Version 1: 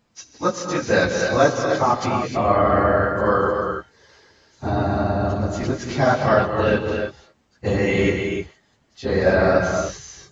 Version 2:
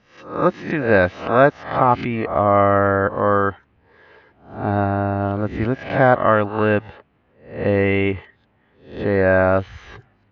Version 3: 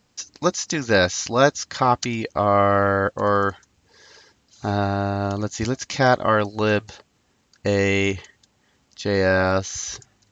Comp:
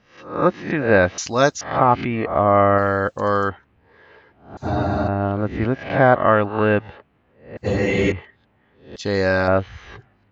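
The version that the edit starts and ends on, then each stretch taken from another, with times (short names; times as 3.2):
2
1.18–1.61 from 3
2.78–3.49 from 3
4.57–5.08 from 1
7.57–8.12 from 1
8.96–9.48 from 3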